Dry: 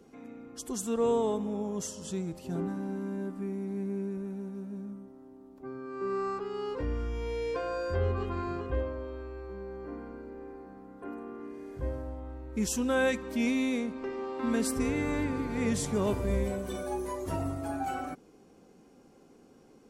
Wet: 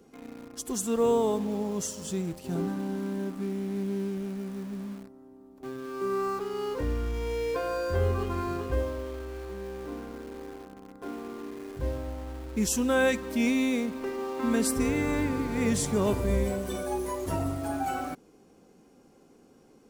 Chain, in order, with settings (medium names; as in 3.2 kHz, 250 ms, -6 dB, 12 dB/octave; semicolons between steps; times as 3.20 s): treble shelf 9.4 kHz +5 dB; in parallel at -8 dB: bit crusher 7-bit